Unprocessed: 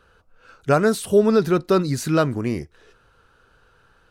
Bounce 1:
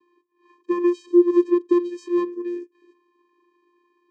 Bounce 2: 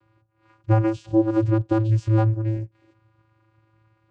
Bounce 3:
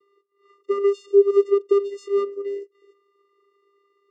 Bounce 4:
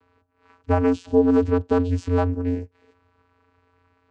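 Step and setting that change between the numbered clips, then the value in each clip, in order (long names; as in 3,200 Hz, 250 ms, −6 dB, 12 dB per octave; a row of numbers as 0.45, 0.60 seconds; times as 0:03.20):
channel vocoder, frequency: 350, 110, 400, 89 Hertz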